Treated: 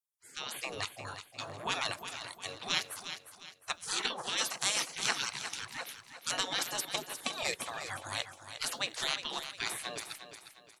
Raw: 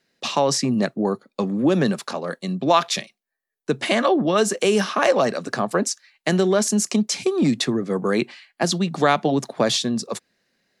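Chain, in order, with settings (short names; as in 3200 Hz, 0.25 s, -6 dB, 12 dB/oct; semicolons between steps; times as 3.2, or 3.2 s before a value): spectral gate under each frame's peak -25 dB weak; AGC gain up to 10.5 dB; feedback echo 0.356 s, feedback 38%, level -10 dB; gain -7.5 dB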